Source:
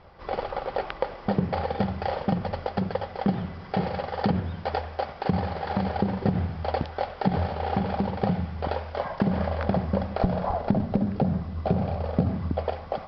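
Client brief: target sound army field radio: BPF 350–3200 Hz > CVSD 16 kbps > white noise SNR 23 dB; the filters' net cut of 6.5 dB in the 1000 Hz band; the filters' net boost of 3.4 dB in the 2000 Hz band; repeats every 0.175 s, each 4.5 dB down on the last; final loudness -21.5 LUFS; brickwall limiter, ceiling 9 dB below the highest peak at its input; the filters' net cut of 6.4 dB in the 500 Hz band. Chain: bell 500 Hz -4.5 dB; bell 1000 Hz -8.5 dB; bell 2000 Hz +8 dB; limiter -19 dBFS; BPF 350–3200 Hz; feedback echo 0.175 s, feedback 60%, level -4.5 dB; CVSD 16 kbps; white noise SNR 23 dB; gain +14 dB

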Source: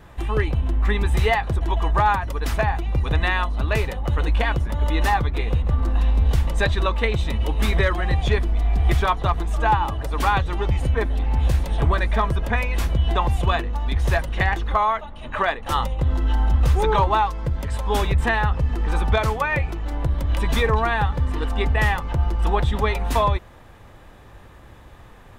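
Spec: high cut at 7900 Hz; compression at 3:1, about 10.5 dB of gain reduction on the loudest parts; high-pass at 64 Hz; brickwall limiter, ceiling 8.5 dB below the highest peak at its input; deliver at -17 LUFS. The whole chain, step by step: HPF 64 Hz; LPF 7900 Hz; compressor 3:1, threshold -30 dBFS; gain +16.5 dB; limiter -7 dBFS

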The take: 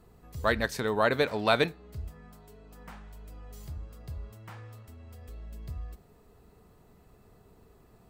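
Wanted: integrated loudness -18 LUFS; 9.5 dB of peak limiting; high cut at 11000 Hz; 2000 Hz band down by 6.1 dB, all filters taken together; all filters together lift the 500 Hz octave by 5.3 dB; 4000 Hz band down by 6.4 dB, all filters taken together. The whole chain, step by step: LPF 11000 Hz; bell 500 Hz +7 dB; bell 2000 Hz -8 dB; bell 4000 Hz -5 dB; gain +16 dB; limiter -3.5 dBFS

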